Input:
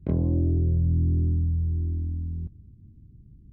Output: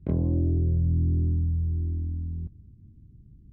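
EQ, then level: distance through air 69 m; -1.0 dB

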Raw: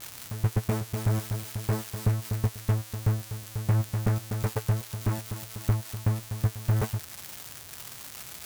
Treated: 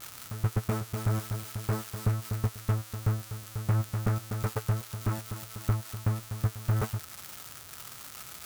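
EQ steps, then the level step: peaking EQ 1.3 kHz +8.5 dB 0.24 oct; -2.5 dB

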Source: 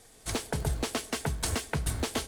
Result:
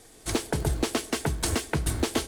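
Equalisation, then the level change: peaking EQ 330 Hz +8 dB 0.45 oct; +3.0 dB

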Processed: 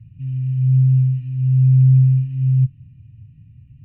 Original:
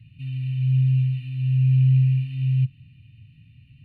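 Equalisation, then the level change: low-pass 1.3 kHz 12 dB/octave; bass shelf 150 Hz +9.5 dB; 0.0 dB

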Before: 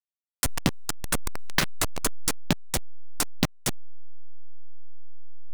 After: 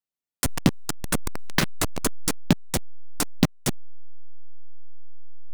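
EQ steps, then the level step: peaking EQ 220 Hz +6.5 dB 2.4 oct; 0.0 dB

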